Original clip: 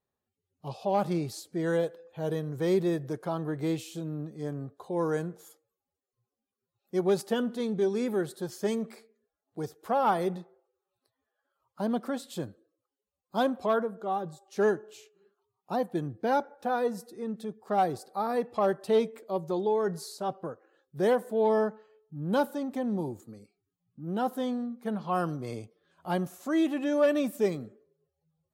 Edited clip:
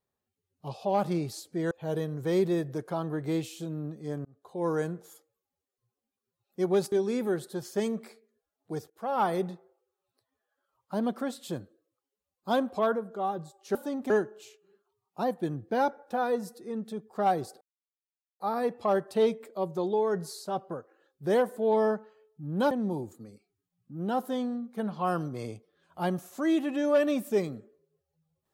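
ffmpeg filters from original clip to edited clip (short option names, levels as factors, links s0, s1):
-filter_complex "[0:a]asplit=9[s0][s1][s2][s3][s4][s5][s6][s7][s8];[s0]atrim=end=1.712[s9];[s1]atrim=start=2.058:end=4.6,asetpts=PTS-STARTPTS,afade=t=out:st=2.538:d=0.004:c=hsin[s10];[s2]atrim=start=4.6:end=7.272,asetpts=PTS-STARTPTS,afade=t=in:d=0.42[s11];[s3]atrim=start=7.788:end=9.77,asetpts=PTS-STARTPTS,afade=t=out:st=1.978:d=0.004:c=hsin:silence=0.11885[s12];[s4]atrim=start=9.77:end=14.622,asetpts=PTS-STARTPTS,afade=t=in:d=0.38:silence=0.11885[s13];[s5]atrim=start=22.438:end=22.792[s14];[s6]atrim=start=14.618:end=18.13,asetpts=PTS-STARTPTS,afade=t=out:st=3.508:d=0.004:c=hsin,apad=pad_dur=0.79[s15];[s7]atrim=start=18.13:end=22.442,asetpts=PTS-STARTPTS,afade=t=in:d=0.004:c=hsin[s16];[s8]atrim=start=22.788[s17];[s10][s11]concat=n=2:v=0:a=1[s18];[s9][s18]acrossfade=d=0.004:c1=hsin:c2=hsin[s19];[s12][s13]concat=n=2:v=0:a=1[s20];[s19][s20]acrossfade=d=0.004:c1=hsin:c2=hsin[s21];[s21][s14]acrossfade=d=0.004:c1=hsin:c2=hsin[s22];[s15][s16]concat=n=2:v=0:a=1[s23];[s22][s23]acrossfade=d=0.004:c1=hsin:c2=hsin[s24];[s24][s17]acrossfade=d=0.004:c1=hsin:c2=hsin"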